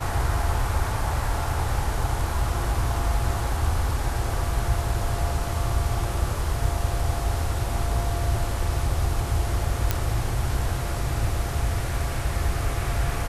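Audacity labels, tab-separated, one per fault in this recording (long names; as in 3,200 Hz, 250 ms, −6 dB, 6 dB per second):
9.910000	9.910000	click −7 dBFS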